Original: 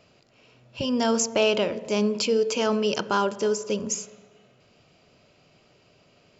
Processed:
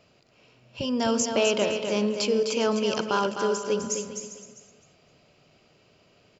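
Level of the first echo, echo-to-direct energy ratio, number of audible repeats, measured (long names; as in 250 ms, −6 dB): −6.5 dB, −5.5 dB, 6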